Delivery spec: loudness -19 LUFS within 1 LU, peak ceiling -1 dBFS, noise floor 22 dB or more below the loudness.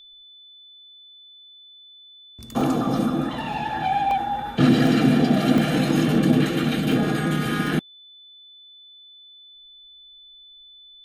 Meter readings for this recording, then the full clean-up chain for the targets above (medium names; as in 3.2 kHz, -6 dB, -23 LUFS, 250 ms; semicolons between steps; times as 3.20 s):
dropouts 8; longest dropout 1.9 ms; steady tone 3.5 kHz; tone level -45 dBFS; loudness -21.5 LUFS; peak level -5.5 dBFS; loudness target -19.0 LUFS
-> interpolate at 2.61/3.53/4.11/4.87/5.58/6.15/6.92/7.67 s, 1.9 ms; band-stop 3.5 kHz, Q 30; trim +2.5 dB